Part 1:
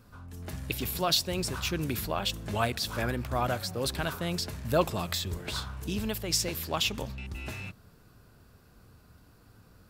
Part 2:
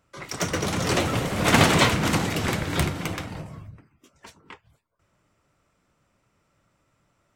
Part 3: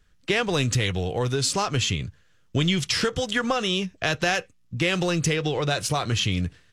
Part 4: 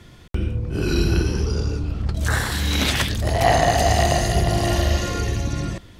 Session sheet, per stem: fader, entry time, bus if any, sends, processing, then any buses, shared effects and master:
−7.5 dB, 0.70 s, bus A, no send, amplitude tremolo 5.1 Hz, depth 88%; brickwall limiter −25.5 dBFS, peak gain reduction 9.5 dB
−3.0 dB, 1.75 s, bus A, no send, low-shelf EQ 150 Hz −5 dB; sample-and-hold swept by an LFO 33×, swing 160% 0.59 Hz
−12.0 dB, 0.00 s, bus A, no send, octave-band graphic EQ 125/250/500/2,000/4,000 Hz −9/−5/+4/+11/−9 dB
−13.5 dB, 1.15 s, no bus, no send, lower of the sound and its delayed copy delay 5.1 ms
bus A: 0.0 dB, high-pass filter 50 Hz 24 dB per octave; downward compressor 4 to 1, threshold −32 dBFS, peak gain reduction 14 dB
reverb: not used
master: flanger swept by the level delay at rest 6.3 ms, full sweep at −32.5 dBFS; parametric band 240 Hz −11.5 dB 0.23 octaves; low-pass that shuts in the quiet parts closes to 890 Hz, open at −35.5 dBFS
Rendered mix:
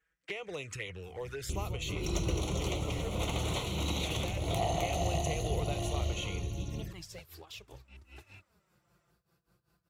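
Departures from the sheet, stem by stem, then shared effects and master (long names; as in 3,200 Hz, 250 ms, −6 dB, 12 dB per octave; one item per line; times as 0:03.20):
stem 2: missing sample-and-hold swept by an LFO 33×, swing 160% 0.59 Hz
stem 4: missing lower of the sound and its delayed copy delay 5.1 ms
master: missing low-pass that shuts in the quiet parts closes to 890 Hz, open at −35.5 dBFS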